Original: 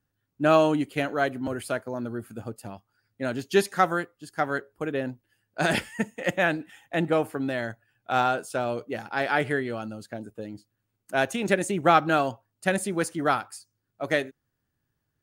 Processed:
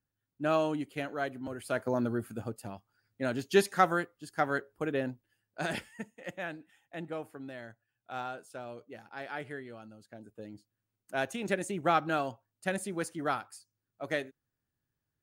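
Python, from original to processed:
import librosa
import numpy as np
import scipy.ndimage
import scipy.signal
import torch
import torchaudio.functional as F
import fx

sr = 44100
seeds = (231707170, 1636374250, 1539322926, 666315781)

y = fx.gain(x, sr, db=fx.line((1.62, -9.0), (1.87, 3.0), (2.6, -3.0), (5.02, -3.0), (6.13, -15.0), (10.02, -15.0), (10.44, -8.0)))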